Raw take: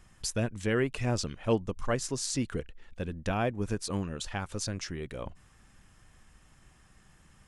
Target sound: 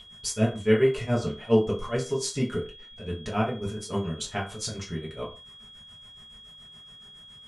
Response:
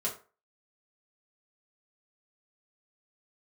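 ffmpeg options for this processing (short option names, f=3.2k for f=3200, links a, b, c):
-filter_complex "[0:a]tremolo=f=7.1:d=0.91,aeval=exprs='val(0)+0.00708*sin(2*PI*3300*n/s)':c=same[a];[1:a]atrim=start_sample=2205,afade=t=out:st=0.24:d=0.01,atrim=end_sample=11025[b];[a][b]afir=irnorm=-1:irlink=0,volume=2.5dB"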